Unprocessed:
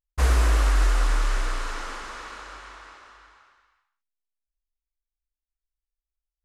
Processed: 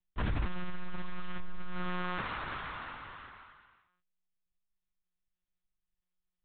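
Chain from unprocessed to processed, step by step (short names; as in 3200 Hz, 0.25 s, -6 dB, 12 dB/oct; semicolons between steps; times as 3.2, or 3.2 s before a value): 1.39–2.22 low shelf 340 Hz +9.5 dB; compressor 2.5:1, threshold -31 dBFS, peak gain reduction 11.5 dB; soft clip -31.5 dBFS, distortion -11 dB; monotone LPC vocoder at 8 kHz 180 Hz; gain +3 dB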